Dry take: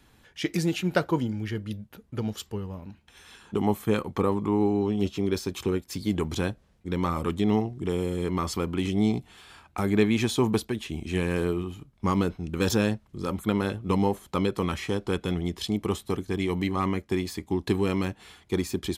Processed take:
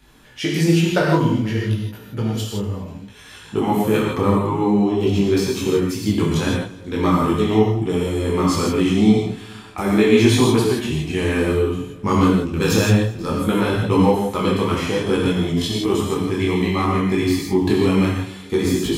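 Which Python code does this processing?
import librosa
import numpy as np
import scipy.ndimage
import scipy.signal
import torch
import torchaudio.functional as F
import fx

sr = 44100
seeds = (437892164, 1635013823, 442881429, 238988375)

y = fx.echo_feedback(x, sr, ms=242, feedback_pct=46, wet_db=-21)
y = fx.rev_gated(y, sr, seeds[0], gate_ms=190, shape='flat', drr_db=-2.0)
y = fx.detune_double(y, sr, cents=20)
y = y * 10.0 ** (8.5 / 20.0)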